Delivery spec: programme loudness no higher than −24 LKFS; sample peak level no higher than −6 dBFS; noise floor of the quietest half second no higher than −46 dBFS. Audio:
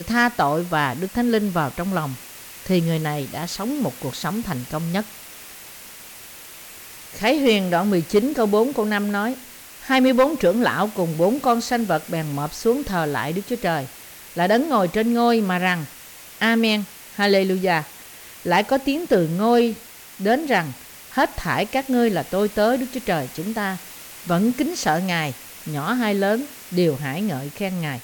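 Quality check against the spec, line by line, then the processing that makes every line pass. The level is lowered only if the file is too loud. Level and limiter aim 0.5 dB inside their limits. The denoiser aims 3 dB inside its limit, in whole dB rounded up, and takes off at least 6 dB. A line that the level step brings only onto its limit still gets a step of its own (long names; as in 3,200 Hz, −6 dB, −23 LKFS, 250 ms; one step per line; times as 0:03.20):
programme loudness −21.5 LKFS: out of spec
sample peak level −8.5 dBFS: in spec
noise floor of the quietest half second −42 dBFS: out of spec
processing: broadband denoise 6 dB, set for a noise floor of −42 dBFS
level −3 dB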